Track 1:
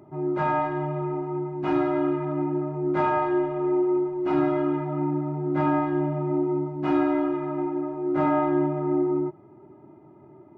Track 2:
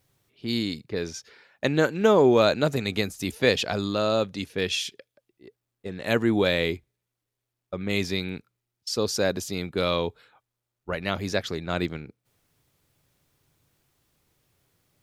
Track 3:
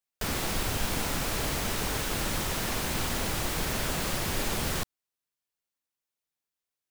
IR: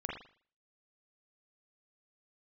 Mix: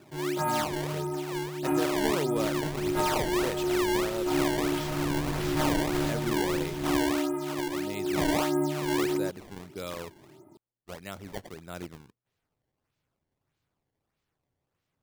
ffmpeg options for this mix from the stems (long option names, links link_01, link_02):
-filter_complex "[0:a]volume=-4dB[link_01];[1:a]volume=-12.5dB,asplit=2[link_02][link_03];[2:a]adelay=2150,volume=-4dB[link_04];[link_03]apad=whole_len=399295[link_05];[link_04][link_05]sidechaincompress=threshold=-37dB:ratio=8:attack=38:release=1280[link_06];[link_01][link_02][link_06]amix=inputs=3:normalize=0,acrusher=samples=20:mix=1:aa=0.000001:lfo=1:lforange=32:lforate=1.6"